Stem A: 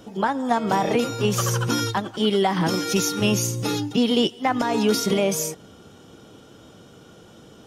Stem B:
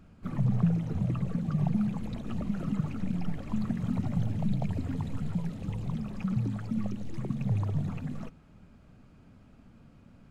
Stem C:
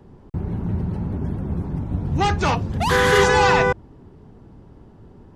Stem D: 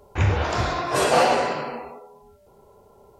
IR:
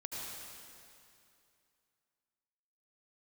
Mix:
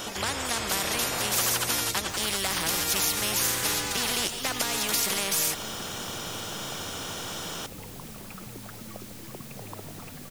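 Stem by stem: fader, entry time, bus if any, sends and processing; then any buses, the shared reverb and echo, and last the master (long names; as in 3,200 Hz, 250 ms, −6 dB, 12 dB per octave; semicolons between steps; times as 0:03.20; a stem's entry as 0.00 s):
0.0 dB, 0.00 s, no send, spectral tilt +1.5 dB per octave
−15.5 dB, 2.10 s, no send, bit-depth reduction 8 bits, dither triangular
−16.0 dB, 0.50 s, no send, no processing
−8.5 dB, 0.00 s, no send, low-pass filter 1,500 Hz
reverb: not used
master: every bin compressed towards the loudest bin 4 to 1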